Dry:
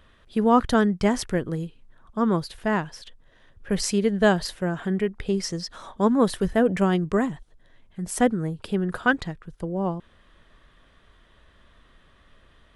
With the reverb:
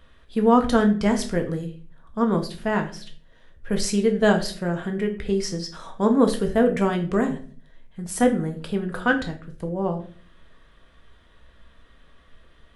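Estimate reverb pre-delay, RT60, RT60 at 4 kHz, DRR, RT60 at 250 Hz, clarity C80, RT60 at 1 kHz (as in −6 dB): 4 ms, 0.45 s, 0.35 s, 3.5 dB, 0.65 s, 15.5 dB, 0.40 s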